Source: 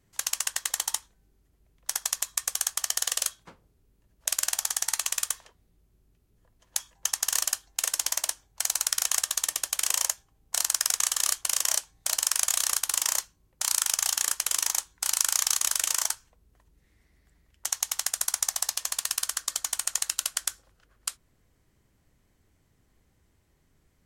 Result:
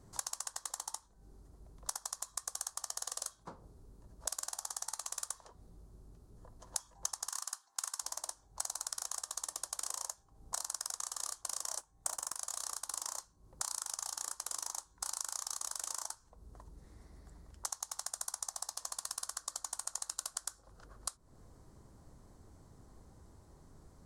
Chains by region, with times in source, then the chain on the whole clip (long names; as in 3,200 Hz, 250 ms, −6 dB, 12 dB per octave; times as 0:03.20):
0:07.28–0:08.02: high-pass filter 300 Hz + low shelf with overshoot 720 Hz −11.5 dB, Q 1.5
0:11.78–0:12.36: parametric band 4,400 Hz −8 dB 0.71 octaves + leveller curve on the samples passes 2
whole clip: high shelf with overshoot 1,600 Hz −13 dB, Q 1.5; downward compressor 10 to 1, threshold −52 dBFS; flat-topped bell 6,300 Hz +10 dB; level +9 dB